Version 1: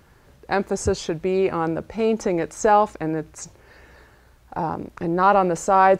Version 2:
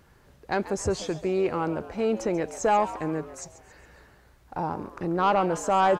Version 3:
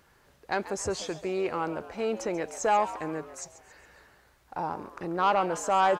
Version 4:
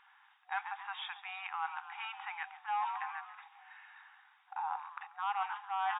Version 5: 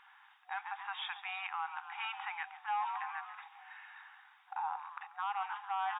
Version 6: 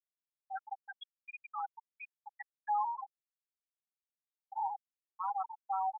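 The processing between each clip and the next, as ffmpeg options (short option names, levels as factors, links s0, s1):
-filter_complex "[0:a]asoftclip=type=tanh:threshold=0.335,asplit=5[s0][s1][s2][s3][s4];[s1]adelay=137,afreqshift=110,volume=0.178[s5];[s2]adelay=274,afreqshift=220,volume=0.0832[s6];[s3]adelay=411,afreqshift=330,volume=0.0394[s7];[s4]adelay=548,afreqshift=440,volume=0.0184[s8];[s0][s5][s6][s7][s8]amix=inputs=5:normalize=0,volume=0.631"
-af "lowshelf=f=370:g=-9.5"
-af "afftfilt=real='re*between(b*sr/4096,740,3800)':imag='im*between(b*sr/4096,740,3800)':win_size=4096:overlap=0.75,areverse,acompressor=threshold=0.0178:ratio=4,areverse,volume=1.12"
-af "alimiter=level_in=2.11:limit=0.0631:level=0:latency=1:release=291,volume=0.473,volume=1.41"
-af "aeval=exprs='val(0)+0.5*0.00224*sgn(val(0))':c=same,afftfilt=real='re*gte(hypot(re,im),0.0891)':imag='im*gte(hypot(re,im),0.0891)':win_size=1024:overlap=0.75,volume=1.41"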